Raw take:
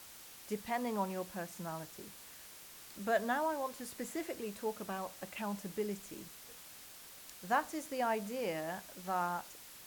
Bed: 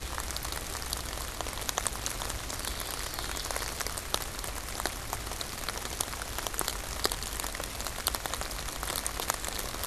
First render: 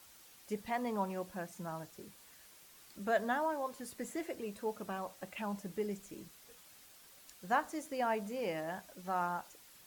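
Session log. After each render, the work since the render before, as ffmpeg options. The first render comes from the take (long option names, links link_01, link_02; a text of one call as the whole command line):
ffmpeg -i in.wav -af "afftdn=noise_reduction=7:noise_floor=-54" out.wav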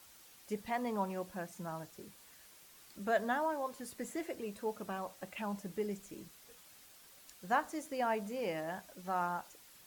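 ffmpeg -i in.wav -af anull out.wav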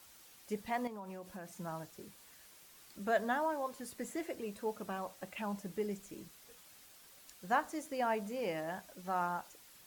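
ffmpeg -i in.wav -filter_complex "[0:a]asettb=1/sr,asplit=3[link_01][link_02][link_03];[link_01]atrim=end=0.874[link_04];[link_02]atrim=start=0.87:end=1.58,asetpts=PTS-STARTPTS,afade=type=in:duration=0.004:curve=qsin,afade=type=out:start_time=0.706:duration=0.004:curve=qsin,acompressor=threshold=-42dB:ratio=10:attack=3.2:release=140:knee=1:detection=peak[link_05];[link_03]atrim=start=1.576[link_06];[link_04][link_05]acrossfade=duration=0.004:curve1=hsin:curve2=qsin[link_07];[link_07][link_06]acrossfade=duration=0.004:curve1=qsin:curve2=hsin" out.wav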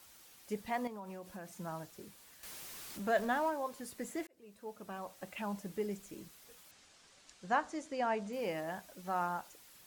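ffmpeg -i in.wav -filter_complex "[0:a]asettb=1/sr,asplit=3[link_01][link_02][link_03];[link_01]atrim=end=2.434[link_04];[link_02]atrim=start=2.43:end=3.5,asetpts=PTS-STARTPTS,afade=type=in:duration=0.004:curve=qsin,afade=type=out:start_time=1.066:duration=0.004:curve=qsin,aeval=exprs='val(0)+0.5*0.00562*sgn(val(0))':channel_layout=same[link_05];[link_03]atrim=start=3.496[link_06];[link_04][link_05]acrossfade=duration=0.004:curve1=hsin:curve2=qsin[link_07];[link_07][link_06]acrossfade=duration=0.004:curve1=qsin:curve2=hsin,asettb=1/sr,asplit=3[link_08][link_09][link_10];[link_08]atrim=end=6.714[link_11];[link_09]atrim=start=6.71:end=8.33,asetpts=PTS-STARTPTS,afade=type=in:duration=0.004:curve=qsin,afade=type=out:start_time=1.616:duration=0.004:curve=qsin,lowpass=frequency=7800:width=0.5412,lowpass=frequency=7800:width=1.3066[link_12];[link_10]atrim=start=8.326[link_13];[link_11][link_12]acrossfade=duration=0.004:curve1=hsin:curve2=qsin[link_14];[link_14][link_13]acrossfade=duration=0.004:curve1=qsin:curve2=hsin,asplit=2[link_15][link_16];[link_15]atrim=end=4.27,asetpts=PTS-STARTPTS,afade=type=out:start_time=4.266:duration=0.004:curve=hsin[link_17];[link_16]atrim=start=4.27,asetpts=PTS-STARTPTS,afade=type=in:duration=1.04[link_18];[link_17][link_18]concat=n=2:v=0:a=1" out.wav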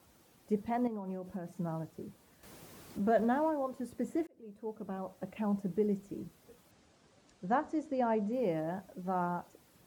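ffmpeg -i in.wav -af "highpass=65,tiltshelf=frequency=900:gain=9.5" out.wav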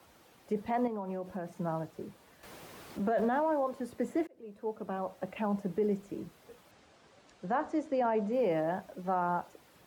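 ffmpeg -i in.wav -filter_complex "[0:a]acrossover=split=240|380|4300[link_01][link_02][link_03][link_04];[link_03]acontrast=77[link_05];[link_01][link_02][link_05][link_04]amix=inputs=4:normalize=0,alimiter=limit=-22dB:level=0:latency=1:release=22" out.wav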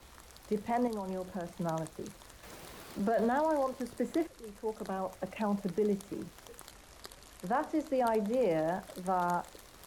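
ffmpeg -i in.wav -i bed.wav -filter_complex "[1:a]volume=-19.5dB[link_01];[0:a][link_01]amix=inputs=2:normalize=0" out.wav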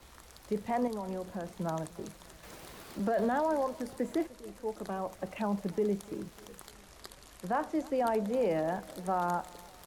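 ffmpeg -i in.wav -filter_complex "[0:a]asplit=2[link_01][link_02];[link_02]adelay=299,lowpass=frequency=2000:poles=1,volume=-22dB,asplit=2[link_03][link_04];[link_04]adelay=299,lowpass=frequency=2000:poles=1,volume=0.51,asplit=2[link_05][link_06];[link_06]adelay=299,lowpass=frequency=2000:poles=1,volume=0.51,asplit=2[link_07][link_08];[link_08]adelay=299,lowpass=frequency=2000:poles=1,volume=0.51[link_09];[link_01][link_03][link_05][link_07][link_09]amix=inputs=5:normalize=0" out.wav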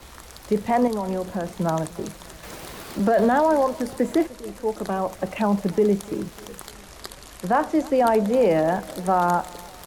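ffmpeg -i in.wav -af "volume=11dB" out.wav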